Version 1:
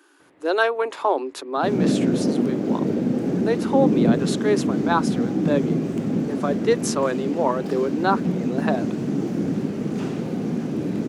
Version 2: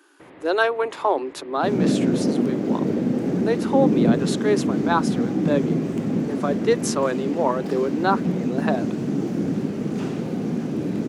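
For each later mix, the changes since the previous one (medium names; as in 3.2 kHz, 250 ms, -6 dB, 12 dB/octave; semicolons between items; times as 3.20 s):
first sound +12.0 dB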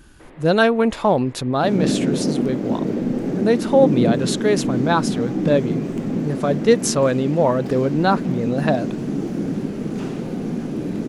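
speech: remove rippled Chebyshev high-pass 270 Hz, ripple 6 dB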